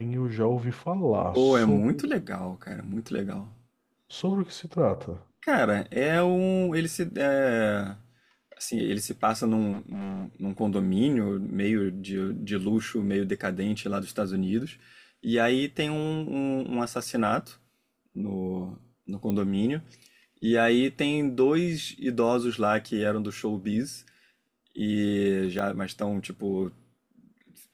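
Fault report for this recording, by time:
9.72–10.26 s: clipped -31.5 dBFS
19.30 s: pop -18 dBFS
25.59 s: pop -18 dBFS

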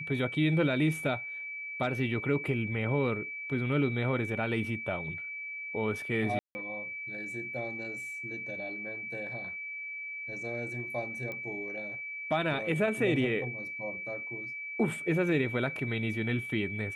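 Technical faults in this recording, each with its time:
whine 2.3 kHz -37 dBFS
6.39–6.55 s: dropout 160 ms
11.32 s: pop -26 dBFS

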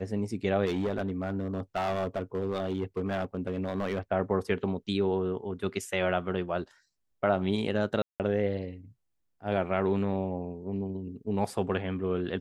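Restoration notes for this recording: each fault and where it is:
0.65–3.99 s: clipped -25 dBFS
8.02–8.20 s: dropout 178 ms

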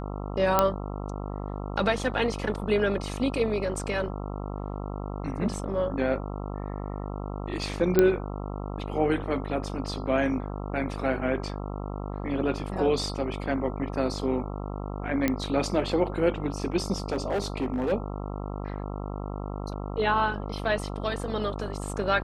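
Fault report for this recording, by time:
buzz 50 Hz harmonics 27 -34 dBFS
0.59 s: pop -6 dBFS
7.99 s: pop -7 dBFS
15.28 s: pop -11 dBFS
16.98–17.93 s: clipped -23 dBFS

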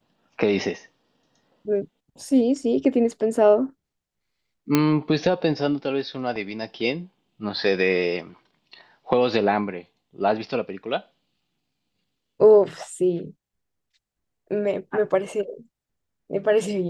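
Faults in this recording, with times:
4.75 s: pop -4 dBFS

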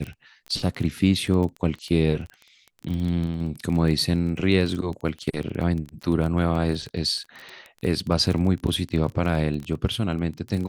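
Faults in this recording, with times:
crackle 17 per s -28 dBFS

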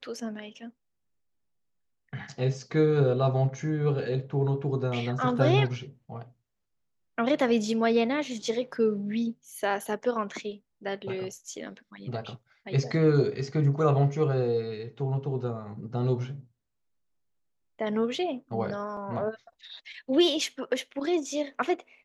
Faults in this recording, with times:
18.97 s: dropout 2.4 ms

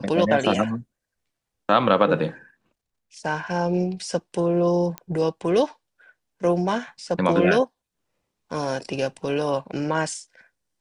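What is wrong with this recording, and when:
4.98 s: pop -16 dBFS

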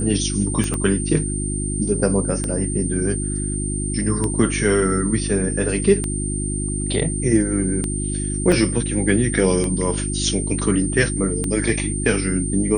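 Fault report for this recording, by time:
hum 50 Hz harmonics 7 -25 dBFS
tick 33 1/3 rpm -10 dBFS
whine 8.9 kHz -27 dBFS
0.74 s: pop -11 dBFS
8.52 s: dropout 3.1 ms

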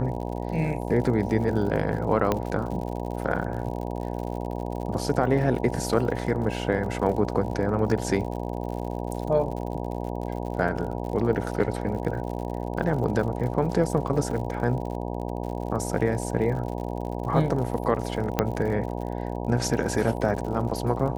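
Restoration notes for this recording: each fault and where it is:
buzz 60 Hz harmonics 16 -31 dBFS
crackle 71 per s -34 dBFS
2.32 s: pop -10 dBFS
14.31 s: dropout 2.2 ms
18.39 s: pop -7 dBFS

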